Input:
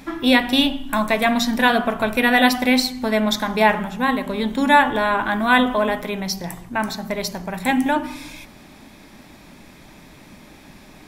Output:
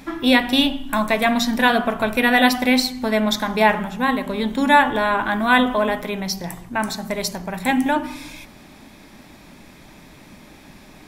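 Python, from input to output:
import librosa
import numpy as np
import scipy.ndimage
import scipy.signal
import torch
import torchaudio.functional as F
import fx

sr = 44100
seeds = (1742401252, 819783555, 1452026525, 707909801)

y = fx.peak_eq(x, sr, hz=8600.0, db=6.5, octaves=0.82, at=(6.82, 7.36))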